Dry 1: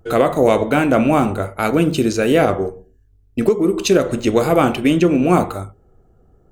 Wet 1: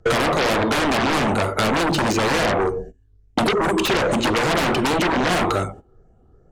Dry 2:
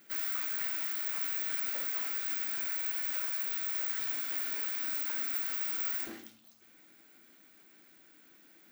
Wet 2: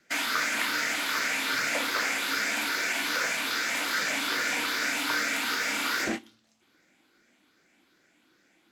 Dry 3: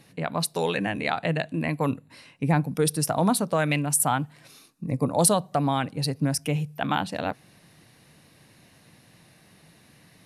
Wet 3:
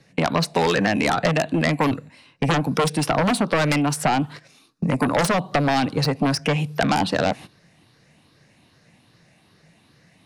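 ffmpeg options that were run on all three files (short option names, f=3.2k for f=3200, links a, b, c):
-filter_complex "[0:a]afftfilt=real='re*pow(10,6/40*sin(2*PI*(0.57*log(max(b,1)*sr/1024/100)/log(2)-(2.5)*(pts-256)/sr)))':imag='im*pow(10,6/40*sin(2*PI*(0.57*log(max(b,1)*sr/1024/100)/log(2)-(2.5)*(pts-256)/sr)))':win_size=1024:overlap=0.75,agate=range=-17dB:threshold=-43dB:ratio=16:detection=peak,lowpass=7.4k,asplit=2[a][b];[b]aeval=exprs='1*sin(PI/2*10*val(0)/1)':c=same,volume=-5dB[c];[a][c]amix=inputs=2:normalize=0,acrossover=split=190|750|2000|4000[d][e][f][g][h];[d]acompressor=threshold=-27dB:ratio=4[i];[e]acompressor=threshold=-18dB:ratio=4[j];[f]acompressor=threshold=-21dB:ratio=4[k];[g]acompressor=threshold=-28dB:ratio=4[l];[h]acompressor=threshold=-29dB:ratio=4[m];[i][j][k][l][m]amix=inputs=5:normalize=0,volume=-4dB"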